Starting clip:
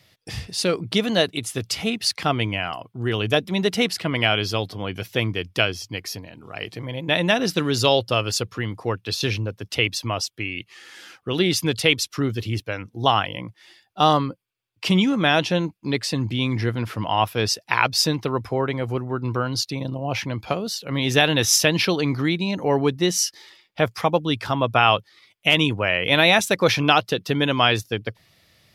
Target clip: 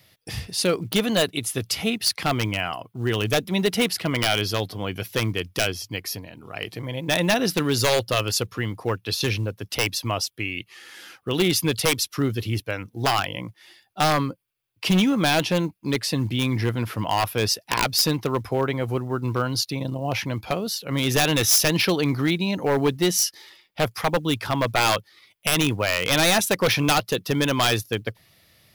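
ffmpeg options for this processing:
-af "aeval=exprs='0.237*(abs(mod(val(0)/0.237+3,4)-2)-1)':c=same,aexciter=amount=1.5:drive=8.3:freq=10k,acrusher=bits=9:mode=log:mix=0:aa=0.000001"

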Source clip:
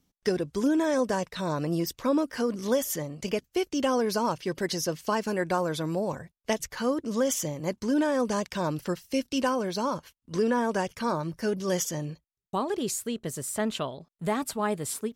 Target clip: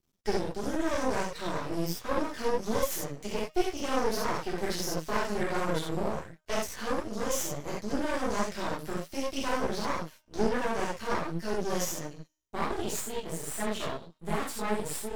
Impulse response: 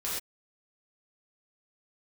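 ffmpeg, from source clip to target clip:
-filter_complex "[0:a]bandreject=f=310.2:t=h:w=4,bandreject=f=620.4:t=h:w=4,bandreject=f=930.6:t=h:w=4,bandreject=f=1.2408k:t=h:w=4,bandreject=f=1.551k:t=h:w=4,bandreject=f=1.8612k:t=h:w=4,bandreject=f=2.1714k:t=h:w=4,bandreject=f=2.4816k:t=h:w=4,bandreject=f=2.7918k:t=h:w=4,bandreject=f=3.102k:t=h:w=4,bandreject=f=3.4122k:t=h:w=4,bandreject=f=3.7224k:t=h:w=4,bandreject=f=4.0326k:t=h:w=4,bandreject=f=4.3428k:t=h:w=4,bandreject=f=4.653k:t=h:w=4,bandreject=f=4.9632k:t=h:w=4,bandreject=f=5.2734k:t=h:w=4,bandreject=f=5.5836k:t=h:w=4,bandreject=f=5.8938k:t=h:w=4,bandreject=f=6.204k:t=h:w=4,bandreject=f=6.5142k:t=h:w=4,bandreject=f=6.8244k:t=h:w=4,bandreject=f=7.1346k:t=h:w=4,bandreject=f=7.4448k:t=h:w=4[a];[1:a]atrim=start_sample=2205,atrim=end_sample=4410[b];[a][b]afir=irnorm=-1:irlink=0,flanger=delay=5.5:depth=9.7:regen=33:speed=1.4:shape=sinusoidal,aeval=exprs='max(val(0),0)':c=same,volume=1.5dB"

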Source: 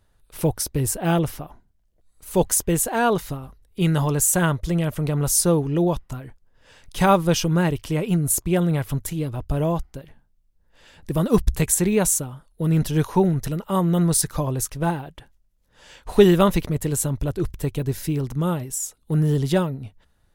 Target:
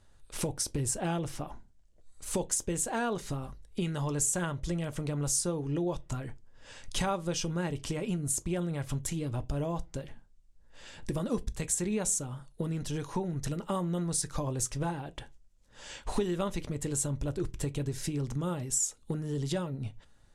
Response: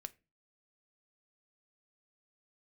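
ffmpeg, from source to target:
-filter_complex "[0:a]acompressor=threshold=-30dB:ratio=6,lowpass=f=7.8k:t=q:w=1.8[a];[1:a]atrim=start_sample=2205,asetrate=57330,aresample=44100[b];[a][b]afir=irnorm=-1:irlink=0,volume=7.5dB"

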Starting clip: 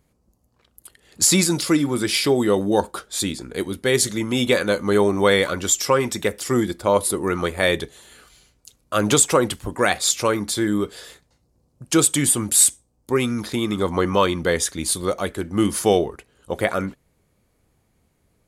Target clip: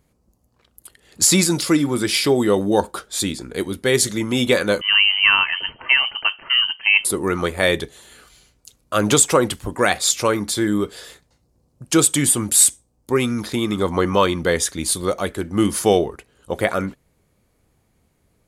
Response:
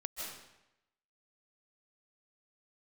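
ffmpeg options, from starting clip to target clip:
-filter_complex "[0:a]asettb=1/sr,asplit=3[a][b][c];[a]atrim=end=4.814[d];[b]atrim=start=4.81:end=7.05,asetpts=PTS-STARTPTS,afade=t=in:d=0.004:c=qsin,afade=t=out:st=2.236:d=0.004:c=qsin,lowpass=f=2.7k:t=q:w=0.5098,lowpass=f=2.7k:t=q:w=0.6013,lowpass=f=2.7k:t=q:w=0.9,lowpass=f=2.7k:t=q:w=2.563,afreqshift=-3200[e];[c]atrim=start=7.046[f];[d][e]acrossfade=d=0.004:c1=hsin:c2=qsin[g];[g][f]acrossfade=d=0.004:c1=qsin:c2=hsin,volume=1.5dB"

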